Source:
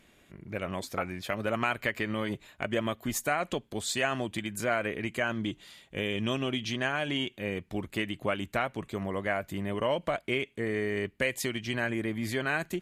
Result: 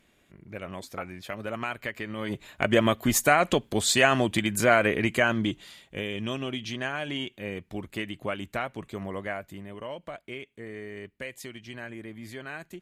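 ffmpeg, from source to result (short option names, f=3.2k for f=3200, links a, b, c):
-af "volume=8.5dB,afade=t=in:st=2.16:d=0.55:silence=0.251189,afade=t=out:st=4.97:d=1.1:silence=0.316228,afade=t=out:st=9.15:d=0.53:silence=0.421697"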